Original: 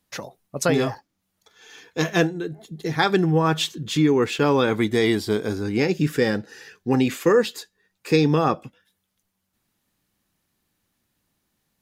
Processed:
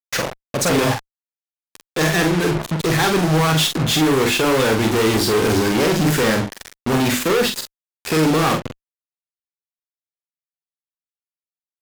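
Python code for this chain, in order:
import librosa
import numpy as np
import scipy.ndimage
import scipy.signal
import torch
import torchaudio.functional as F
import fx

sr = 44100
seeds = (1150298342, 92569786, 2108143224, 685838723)

y = fx.peak_eq(x, sr, hz=1600.0, db=2.0, octaves=0.44)
y = fx.hum_notches(y, sr, base_hz=50, count=7)
y = fx.rider(y, sr, range_db=5, speed_s=0.5)
y = fx.fuzz(y, sr, gain_db=44.0, gate_db=-35.0)
y = fx.doubler(y, sr, ms=45.0, db=-5)
y = y * 10.0 ** (-3.0 / 20.0)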